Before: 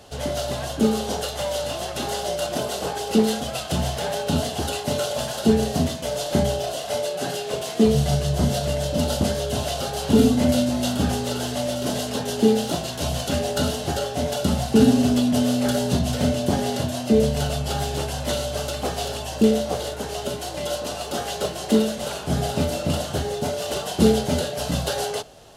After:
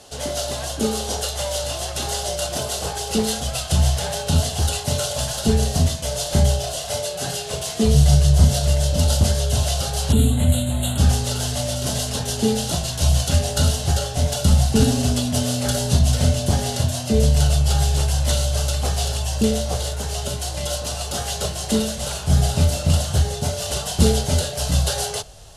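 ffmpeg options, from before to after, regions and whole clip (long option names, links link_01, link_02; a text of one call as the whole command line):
ffmpeg -i in.wav -filter_complex "[0:a]asettb=1/sr,asplit=3[link_01][link_02][link_03];[link_01]atrim=end=10.124[link_04];[link_02]atrim=start=10.12:end=10.98,asetpts=PTS-STARTPTS,afade=type=in:duration=0.004:curve=qsin,afade=type=out:start_time=0.856:duration=0.004:curve=qsin,asuperstop=centerf=5400:order=8:qfactor=1.8,acrossover=split=290|3000[link_05][link_06][link_07];[link_06]acompressor=threshold=-29dB:ratio=2:attack=3.2:release=140:knee=2.83:detection=peak[link_08];[link_05][link_08][link_07]amix=inputs=3:normalize=0[link_09];[link_03]atrim=start=10.976[link_10];[link_04][link_09]acrossfade=duration=0.004:curve1=hsin:curve2=qsin[link_11];[link_11][link_10]acrossfade=duration=0.004:curve1=qsin:curve2=hsin,asubboost=boost=11.5:cutoff=89,lowpass=frequency=12000:width=0.5412,lowpass=frequency=12000:width=1.3066,bass=frequency=250:gain=-3,treble=frequency=4000:gain=8" out.wav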